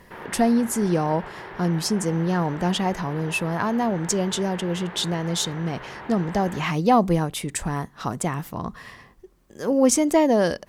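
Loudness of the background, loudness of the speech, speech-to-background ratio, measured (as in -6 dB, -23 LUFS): -39.0 LUFS, -23.5 LUFS, 15.5 dB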